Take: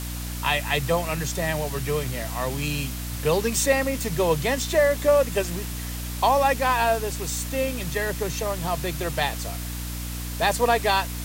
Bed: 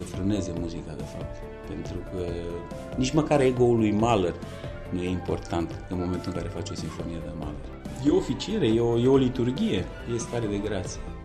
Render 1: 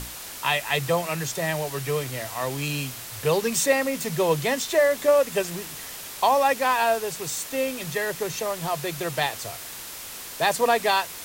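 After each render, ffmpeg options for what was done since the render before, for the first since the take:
-af "bandreject=f=60:t=h:w=6,bandreject=f=120:t=h:w=6,bandreject=f=180:t=h:w=6,bandreject=f=240:t=h:w=6,bandreject=f=300:t=h:w=6"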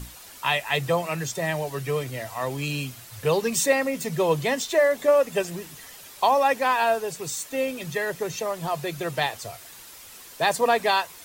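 -af "afftdn=nr=9:nf=-38"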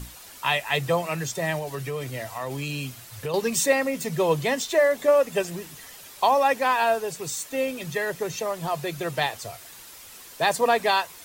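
-filter_complex "[0:a]asettb=1/sr,asplit=3[a][b][c];[a]atrim=end=1.584[d];[b]atrim=start=1.58:end=3.34,asetpts=PTS-STARTPTS,afade=t=in:d=0.004:c=qsin,afade=t=out:st=1.756:d=0.004:c=qsin,acompressor=threshold=-26dB:ratio=6:attack=3.2:release=140:knee=1:detection=peak[e];[c]atrim=start=3.336[f];[d][e]acrossfade=d=0.004:c1=hsin:c2=qsin[g];[g][f]acrossfade=d=0.004:c1=qsin:c2=hsin"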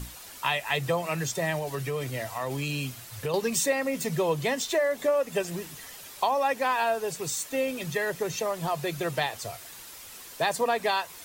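-af "acompressor=threshold=-24dB:ratio=2.5"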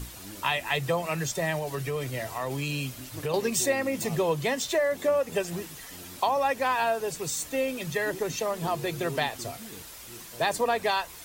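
-filter_complex "[1:a]volume=-20dB[a];[0:a][a]amix=inputs=2:normalize=0"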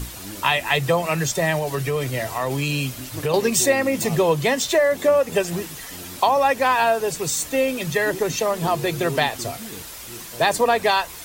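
-af "volume=7.5dB"

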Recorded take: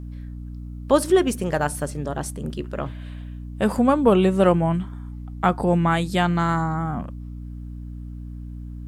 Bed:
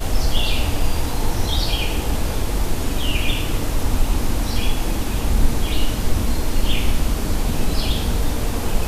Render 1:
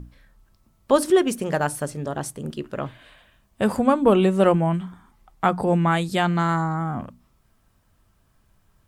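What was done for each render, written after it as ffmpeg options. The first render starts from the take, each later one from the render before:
-af "bandreject=f=60:t=h:w=6,bandreject=f=120:t=h:w=6,bandreject=f=180:t=h:w=6,bandreject=f=240:t=h:w=6,bandreject=f=300:t=h:w=6"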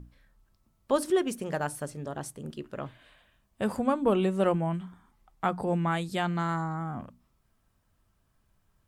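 -af "volume=-8dB"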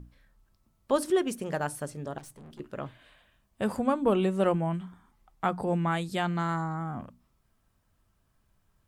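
-filter_complex "[0:a]asettb=1/sr,asplit=3[a][b][c];[a]atrim=end=2.184[d];[b]atrim=start=2.18:end=2.6,asetpts=PTS-STARTPTS,afade=t=in:d=0.004:c=qsin,afade=t=out:st=0.416:d=0.004:c=qsin,aeval=exprs='(tanh(200*val(0)+0.35)-tanh(0.35))/200':c=same[e];[c]atrim=start=2.596[f];[d][e]acrossfade=d=0.004:c1=hsin:c2=qsin[g];[g][f]acrossfade=d=0.004:c1=qsin:c2=hsin"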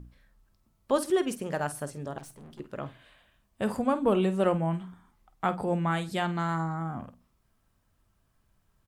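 -filter_complex "[0:a]asplit=2[a][b];[b]adelay=49,volume=-13.5dB[c];[a][c]amix=inputs=2:normalize=0,asplit=2[d][e];[e]adelay=128.3,volume=-28dB,highshelf=f=4k:g=-2.89[f];[d][f]amix=inputs=2:normalize=0"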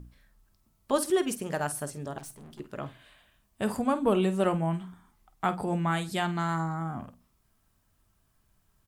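-af "highshelf=f=5.2k:g=6.5,bandreject=f=520:w=12"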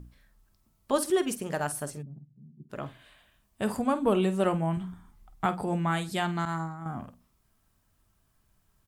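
-filter_complex "[0:a]asplit=3[a][b][c];[a]afade=t=out:st=2.01:d=0.02[d];[b]asuperpass=centerf=160:order=4:qfactor=1.7,afade=t=in:st=2.01:d=0.02,afade=t=out:st=2.69:d=0.02[e];[c]afade=t=in:st=2.69:d=0.02[f];[d][e][f]amix=inputs=3:normalize=0,asettb=1/sr,asplit=3[g][h][i];[g]atrim=end=4.774[j];[h]atrim=start=4.77:end=5.46,asetpts=PTS-STARTPTS,afade=t=in:d=0.004:c=qsin,afade=t=out:st=0.686:d=0.004:c=qsin,lowshelf=f=170:g=11.5[k];[i]atrim=start=5.456[l];[j][k]acrossfade=d=0.004:c1=hsin:c2=qsin[m];[m][l]acrossfade=d=0.004:c1=qsin:c2=hsin,asettb=1/sr,asplit=3[n][o][p];[n]atrim=end=6.454[q];[o]atrim=start=6.45:end=6.86,asetpts=PTS-STARTPTS,afade=t=in:d=0.004:c=qsin,afade=t=out:st=0.406:d=0.004:c=qsin,agate=range=-33dB:threshold=-27dB:ratio=3:release=100:detection=peak[r];[p]atrim=start=6.856[s];[q][r]acrossfade=d=0.004:c1=hsin:c2=qsin[t];[t][s]acrossfade=d=0.004:c1=qsin:c2=hsin"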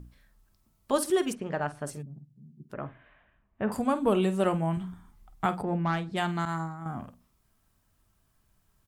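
-filter_complex "[0:a]asplit=3[a][b][c];[a]afade=t=out:st=1.32:d=0.02[d];[b]lowpass=2.6k,afade=t=in:st=1.32:d=0.02,afade=t=out:st=1.85:d=0.02[e];[c]afade=t=in:st=1.85:d=0.02[f];[d][e][f]amix=inputs=3:normalize=0,asettb=1/sr,asplit=3[g][h][i];[g]atrim=end=2.734[j];[h]atrim=start=2.73:end=3.72,asetpts=PTS-STARTPTS,afade=t=in:d=0.004:c=qsin,afade=t=out:st=0.986:d=0.004:c=qsin,lowpass=f=2.2k:w=0.5412,lowpass=f=2.2k:w=1.3066[k];[i]atrim=start=3.716[l];[j][k]acrossfade=d=0.004:c1=hsin:c2=qsin[m];[m][l]acrossfade=d=0.004:c1=qsin:c2=hsin,asplit=3[n][o][p];[n]afade=t=out:st=5.61:d=0.02[q];[o]adynamicsmooth=sensitivity=2:basefreq=1.7k,afade=t=in:st=5.61:d=0.02,afade=t=out:st=6.16:d=0.02[r];[p]afade=t=in:st=6.16:d=0.02[s];[q][r][s]amix=inputs=3:normalize=0"

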